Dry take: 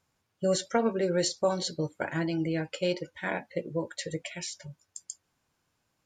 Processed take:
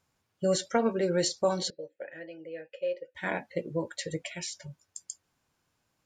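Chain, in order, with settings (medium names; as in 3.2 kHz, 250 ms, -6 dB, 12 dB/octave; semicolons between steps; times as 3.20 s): 1.70–3.15 s: vowel filter e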